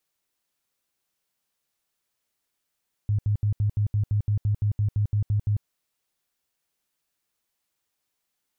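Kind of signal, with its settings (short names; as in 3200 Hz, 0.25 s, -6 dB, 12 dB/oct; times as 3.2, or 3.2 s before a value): tone bursts 104 Hz, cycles 10, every 0.17 s, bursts 15, -19.5 dBFS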